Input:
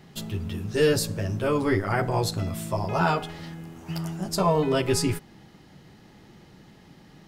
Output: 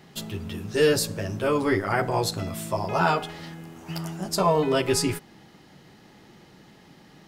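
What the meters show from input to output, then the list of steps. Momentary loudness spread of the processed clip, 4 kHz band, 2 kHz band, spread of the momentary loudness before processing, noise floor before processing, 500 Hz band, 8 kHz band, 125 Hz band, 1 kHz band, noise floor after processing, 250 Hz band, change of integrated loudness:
15 LU, +2.0 dB, +2.0 dB, 13 LU, -52 dBFS, +1.0 dB, +2.0 dB, -3.0 dB, +2.0 dB, -53 dBFS, -0.5 dB, +0.5 dB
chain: low shelf 150 Hz -9 dB; gain +2 dB

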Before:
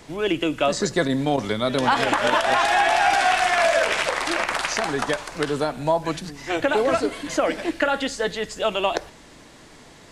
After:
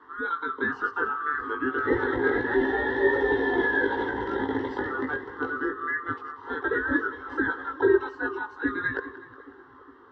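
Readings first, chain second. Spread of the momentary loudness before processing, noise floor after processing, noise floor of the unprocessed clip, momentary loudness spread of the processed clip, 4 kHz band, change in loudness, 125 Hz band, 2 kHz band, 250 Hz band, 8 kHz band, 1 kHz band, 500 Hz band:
8 LU, -50 dBFS, -47 dBFS, 8 LU, -20.0 dB, -5.0 dB, -9.5 dB, -2.5 dB, -2.5 dB, under -35 dB, -9.0 dB, -4.5 dB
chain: band-swap scrambler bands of 1000 Hz; bell 270 Hz +13.5 dB 0.33 oct; chorus voices 6, 0.23 Hz, delay 19 ms, depth 1.3 ms; speaker cabinet 100–2500 Hz, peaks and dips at 400 Hz +10 dB, 930 Hz +4 dB, 1300 Hz -5 dB; fixed phaser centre 650 Hz, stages 6; split-band echo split 720 Hz, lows 0.412 s, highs 0.184 s, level -16 dB

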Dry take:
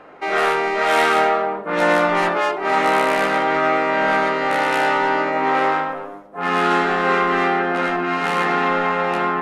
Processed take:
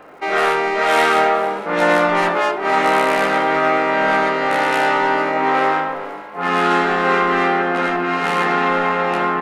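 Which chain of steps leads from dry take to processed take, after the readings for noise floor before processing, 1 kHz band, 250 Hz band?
-34 dBFS, +1.5 dB, +1.5 dB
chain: frequency-shifting echo 0.455 s, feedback 54%, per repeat +54 Hz, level -18 dB; crackle 150/s -48 dBFS; gain +1.5 dB

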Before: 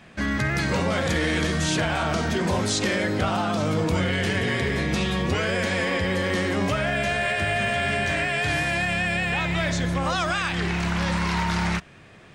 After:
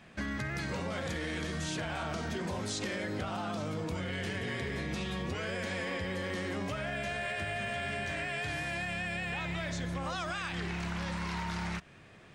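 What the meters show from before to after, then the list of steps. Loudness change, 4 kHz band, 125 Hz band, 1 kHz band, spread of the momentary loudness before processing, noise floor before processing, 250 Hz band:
-11.5 dB, -11.5 dB, -12.0 dB, -11.5 dB, 2 LU, -48 dBFS, -11.5 dB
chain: compressor, threshold -26 dBFS, peak gain reduction 7.5 dB; gain -6.5 dB

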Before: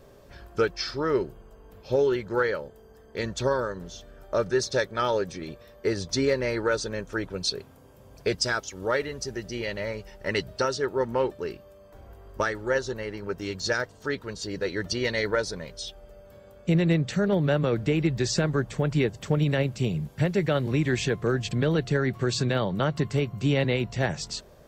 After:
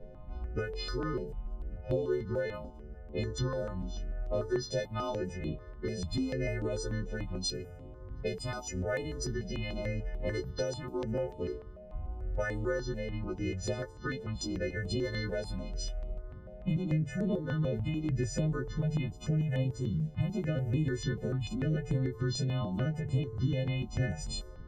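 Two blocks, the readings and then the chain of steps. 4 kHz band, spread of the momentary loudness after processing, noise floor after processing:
-9.5 dB, 8 LU, -48 dBFS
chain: frequency quantiser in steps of 3 st; low-pass opened by the level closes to 1400 Hz, open at -23 dBFS; tilt -3.5 dB/oct; compressor 3:1, threshold -30 dBFS, peak gain reduction 14.5 dB; de-hum 147 Hz, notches 7; step phaser 6.8 Hz 310–5600 Hz

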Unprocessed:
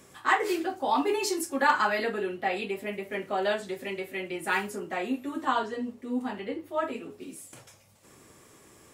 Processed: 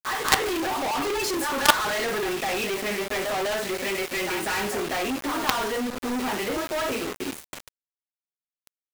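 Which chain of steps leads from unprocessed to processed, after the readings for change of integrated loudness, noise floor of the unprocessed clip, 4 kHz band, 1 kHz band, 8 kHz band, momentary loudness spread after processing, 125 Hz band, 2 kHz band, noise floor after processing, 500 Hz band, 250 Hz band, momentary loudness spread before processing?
+4.0 dB, -56 dBFS, +10.5 dB, +1.5 dB, +10.0 dB, 7 LU, +6.5 dB, +4.0 dB, under -85 dBFS, +3.0 dB, +2.5 dB, 10 LU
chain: pre-echo 0.201 s -14.5 dB; overdrive pedal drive 14 dB, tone 2400 Hz, clips at -10 dBFS; companded quantiser 2-bit; gain -1 dB

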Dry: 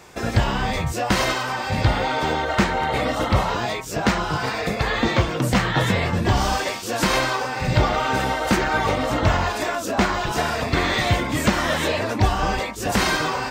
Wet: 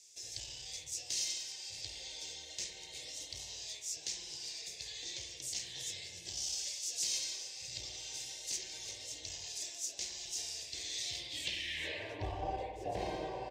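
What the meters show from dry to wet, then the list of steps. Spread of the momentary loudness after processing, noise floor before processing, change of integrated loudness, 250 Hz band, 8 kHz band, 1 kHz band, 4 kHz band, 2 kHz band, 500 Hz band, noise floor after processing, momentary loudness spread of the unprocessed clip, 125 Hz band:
7 LU, -29 dBFS, -18.0 dB, -30.5 dB, -5.0 dB, -26.0 dB, -11.5 dB, -24.5 dB, -24.0 dB, -51 dBFS, 4 LU, -30.0 dB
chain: bell 280 Hz +5.5 dB 0.8 oct; spectral gain 11.49–11.78, 360–1600 Hz -15 dB; passive tone stack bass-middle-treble 10-0-1; echo 0.225 s -20.5 dB; in parallel at -1 dB: one-sided clip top -33 dBFS; on the sum: band-pass sweep 6200 Hz -> 810 Hz, 11.02–12.44; fixed phaser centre 550 Hz, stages 4; spring tank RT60 1.3 s, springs 52 ms, chirp 35 ms, DRR 4 dB; gain +14 dB

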